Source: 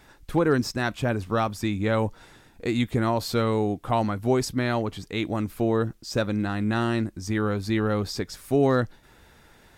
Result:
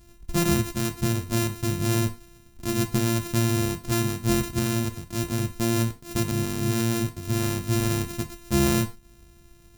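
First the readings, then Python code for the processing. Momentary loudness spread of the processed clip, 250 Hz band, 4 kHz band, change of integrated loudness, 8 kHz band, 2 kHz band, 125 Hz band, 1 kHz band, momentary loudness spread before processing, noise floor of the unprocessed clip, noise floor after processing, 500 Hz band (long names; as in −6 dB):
6 LU, 0.0 dB, +2.5 dB, 0.0 dB, +10.0 dB, −2.0 dB, +3.0 dB, −5.0 dB, 6 LU, −55 dBFS, −53 dBFS, −5.0 dB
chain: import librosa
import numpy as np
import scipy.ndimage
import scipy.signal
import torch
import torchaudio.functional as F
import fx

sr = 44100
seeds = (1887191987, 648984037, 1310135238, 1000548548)

y = np.r_[np.sort(x[:len(x) // 128 * 128].reshape(-1, 128), axis=1).ravel(), x[len(x) // 128 * 128:]]
y = fx.bass_treble(y, sr, bass_db=14, treble_db=11)
y = fx.rev_gated(y, sr, seeds[0], gate_ms=130, shape='falling', drr_db=8.0)
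y = y * 10.0 ** (-8.0 / 20.0)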